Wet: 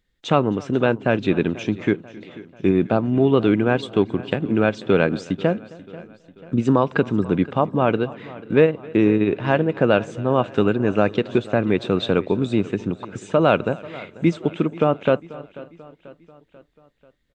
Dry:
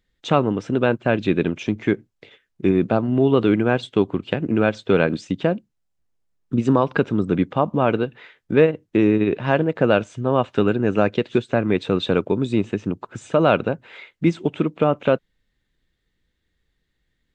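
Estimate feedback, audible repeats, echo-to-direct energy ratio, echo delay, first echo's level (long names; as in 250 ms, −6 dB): repeats not evenly spaced, 5, −16.5 dB, 265 ms, −23.0 dB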